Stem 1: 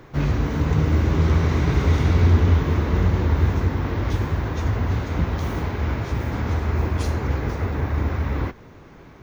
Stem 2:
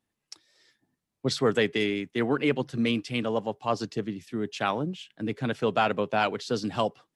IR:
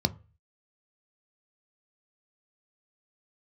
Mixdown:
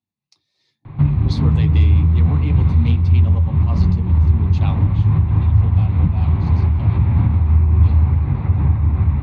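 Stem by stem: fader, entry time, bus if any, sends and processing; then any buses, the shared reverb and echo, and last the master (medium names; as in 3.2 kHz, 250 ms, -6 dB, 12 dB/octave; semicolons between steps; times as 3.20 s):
-2.0 dB, 0.85 s, send -9 dB, Bessel low-pass 2.2 kHz, order 6; bass shelf 130 Hz +6.5 dB; compression, threshold -22 dBFS, peak gain reduction 14.5 dB
4.98 s -8 dB -> 5.19 s -18 dB, 0.00 s, send -6.5 dB, flange 0.91 Hz, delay 2.7 ms, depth 7.7 ms, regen -58%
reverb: on, RT60 0.35 s, pre-delay 3 ms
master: level rider gain up to 8.5 dB; random flutter of the level, depth 55%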